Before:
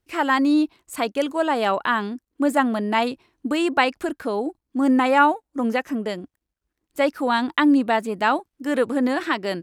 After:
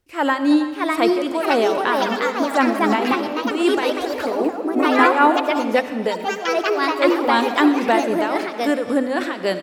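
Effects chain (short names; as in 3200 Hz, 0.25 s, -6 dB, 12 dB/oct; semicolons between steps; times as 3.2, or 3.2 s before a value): bell 520 Hz +4.5 dB 0.28 oct; de-hum 51.13 Hz, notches 5; in parallel at -1.5 dB: limiter -15.5 dBFS, peak gain reduction 12 dB; on the sum: tremolo 3.8 Hz, depth 74%; echo 0.322 s -15.5 dB; echoes that change speed 0.649 s, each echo +3 st, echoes 3; on a send at -10.5 dB: reverb RT60 1.5 s, pre-delay 35 ms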